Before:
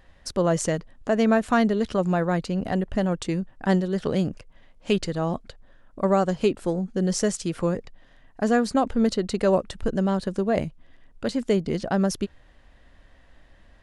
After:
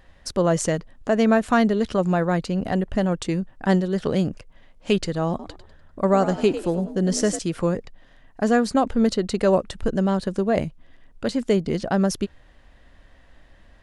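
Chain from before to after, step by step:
0:05.29–0:07.39: echo with shifted repeats 99 ms, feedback 36%, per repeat +64 Hz, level −12 dB
level +2 dB

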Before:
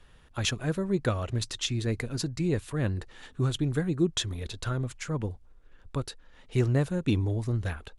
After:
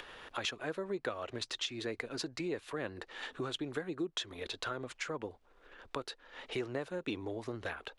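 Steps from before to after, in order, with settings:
upward compression, threshold −38 dBFS
three-way crossover with the lows and the highs turned down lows −22 dB, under 310 Hz, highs −12 dB, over 4,900 Hz
downward compressor 3 to 1, threshold −42 dBFS, peak gain reduction 13 dB
level +5 dB

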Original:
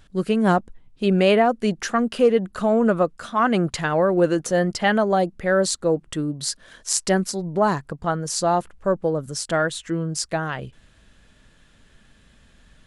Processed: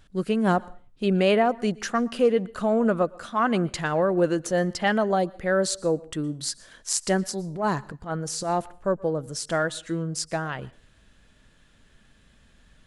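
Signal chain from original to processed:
0:07.43–0:08.74: transient designer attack −12 dB, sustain +2 dB
convolution reverb RT60 0.35 s, pre-delay 109 ms, DRR 22 dB
level −3.5 dB

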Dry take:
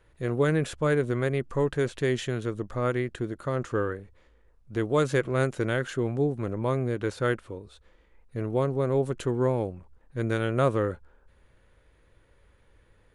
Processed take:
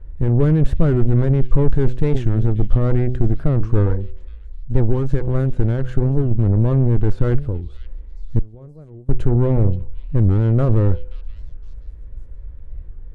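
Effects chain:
hum removal 125.8 Hz, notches 4
0:08.38–0:09.09: gate with flip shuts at −23 dBFS, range −26 dB
harmonic generator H 8 −20 dB, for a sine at −12 dBFS
0:04.85–0:06.32: downward compressor, threshold −27 dBFS, peak gain reduction 9 dB
low-shelf EQ 69 Hz +10.5 dB
echo through a band-pass that steps 527 ms, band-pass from 3,600 Hz, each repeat 0.7 octaves, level −11.5 dB
brickwall limiter −18.5 dBFS, peak gain reduction 8 dB
spectral tilt −4.5 dB per octave
wow of a warped record 45 rpm, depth 250 cents
level +1.5 dB

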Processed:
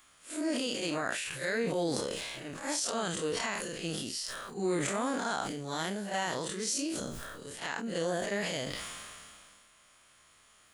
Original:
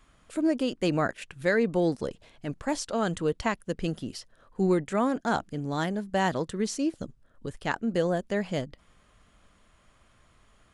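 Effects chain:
spectrum smeared in time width 91 ms
spectral tilt +3.5 dB per octave
backwards echo 30 ms −8.5 dB
brickwall limiter −22.5 dBFS, peak gain reduction 8.5 dB
level that may fall only so fast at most 25 dB per second

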